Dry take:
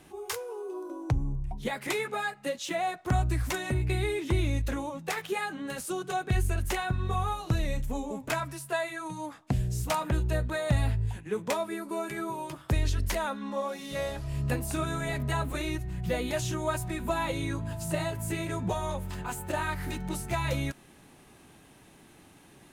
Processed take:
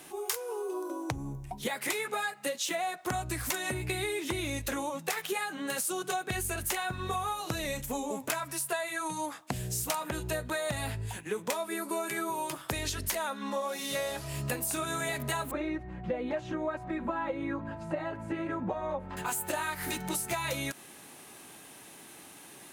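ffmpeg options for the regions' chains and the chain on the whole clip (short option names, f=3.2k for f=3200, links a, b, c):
-filter_complex "[0:a]asettb=1/sr,asplit=3[a][b][c];[a]atrim=end=15.514[d];[b]atrim=start=15.51:end=19.17,asetpts=PTS-STARTPTS,afade=t=in:d=0.004:c=qsin,afade=t=out:st=3.656:d=0.004:c=qsin,lowpass=1.3k,aecho=1:1:3.7:0.53,atrim=end_sample=161406[e];[c]atrim=start=19.166[f];[d][e]acrossfade=d=0.004:c1=hsin:c2=qsin[g];[g][f]acrossfade=d=0.004:c1=qsin:c2=hsin,highpass=f=400:p=1,highshelf=f=6.7k:g=9,acompressor=threshold=-35dB:ratio=6,volume=5.5dB"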